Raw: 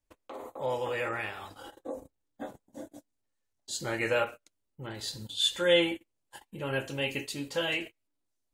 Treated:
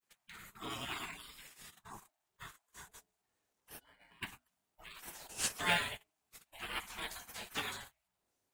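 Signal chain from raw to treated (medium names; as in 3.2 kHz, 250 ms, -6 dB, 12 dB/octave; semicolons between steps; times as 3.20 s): peaking EQ 630 Hz +7.5 dB 0.64 oct; 3.79–4.23 s: pitch-class resonator F#, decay 0.28 s; de-hum 61.61 Hz, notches 9; spectral gate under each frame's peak -25 dB weak; in parallel at -8 dB: sample-rate reducer 6.4 kHz, jitter 0%; on the sum: trim +4.5 dB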